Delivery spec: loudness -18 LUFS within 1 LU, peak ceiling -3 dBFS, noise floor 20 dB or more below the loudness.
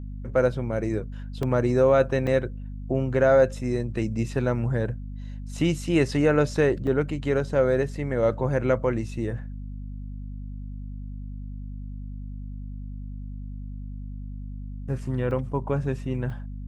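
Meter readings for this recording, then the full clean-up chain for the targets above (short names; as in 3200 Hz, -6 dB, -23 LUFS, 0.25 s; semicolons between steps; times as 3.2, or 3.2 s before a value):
dropouts 5; longest dropout 1.8 ms; hum 50 Hz; harmonics up to 250 Hz; hum level -33 dBFS; loudness -25.0 LUFS; peak -8.5 dBFS; loudness target -18.0 LUFS
-> interpolate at 1.43/2.27/6.87/15.31/16.3, 1.8 ms; notches 50/100/150/200/250 Hz; gain +7 dB; limiter -3 dBFS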